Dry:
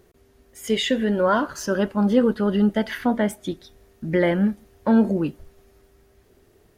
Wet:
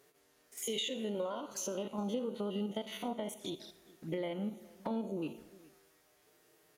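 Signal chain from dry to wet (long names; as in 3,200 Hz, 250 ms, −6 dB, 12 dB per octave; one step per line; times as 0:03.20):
spectrum averaged block by block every 50 ms
high-pass filter 690 Hz 6 dB per octave
high-shelf EQ 4,800 Hz +4 dB
downward compressor 6 to 1, threshold −33 dBFS, peak gain reduction 13.5 dB
flanger swept by the level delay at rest 8.2 ms, full sweep at −37.5 dBFS
slap from a distant wall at 71 metres, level −22 dB
on a send at −15 dB: convolution reverb RT60 0.75 s, pre-delay 73 ms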